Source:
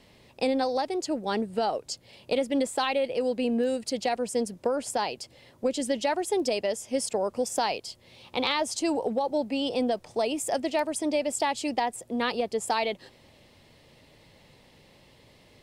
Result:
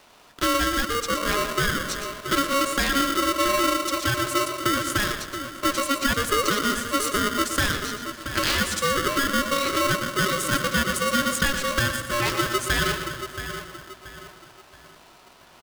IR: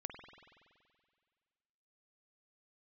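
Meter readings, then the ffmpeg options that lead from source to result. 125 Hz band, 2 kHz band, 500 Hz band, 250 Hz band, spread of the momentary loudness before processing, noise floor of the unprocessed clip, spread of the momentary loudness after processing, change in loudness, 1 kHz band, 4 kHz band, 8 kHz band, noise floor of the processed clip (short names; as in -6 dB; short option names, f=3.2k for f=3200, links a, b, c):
+17.5 dB, +12.5 dB, -1.0 dB, +2.5 dB, 5 LU, -58 dBFS, 9 LU, +5.0 dB, +5.5 dB, +9.0 dB, +8.0 dB, -52 dBFS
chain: -filter_complex "[0:a]asplit=2[a][b];[b]adelay=678,lowpass=f=1.6k:p=1,volume=-9dB,asplit=2[c][d];[d]adelay=678,lowpass=f=1.6k:p=1,volume=0.38,asplit=2[e][f];[f]adelay=678,lowpass=f=1.6k:p=1,volume=0.38,asplit=2[g][h];[h]adelay=678,lowpass=f=1.6k:p=1,volume=0.38[i];[a][c][e][g][i]amix=inputs=5:normalize=0,asplit=2[j][k];[1:a]atrim=start_sample=2205,adelay=118[l];[k][l]afir=irnorm=-1:irlink=0,volume=-4.5dB[m];[j][m]amix=inputs=2:normalize=0,aeval=exprs='val(0)*sgn(sin(2*PI*830*n/s))':c=same,volume=3dB"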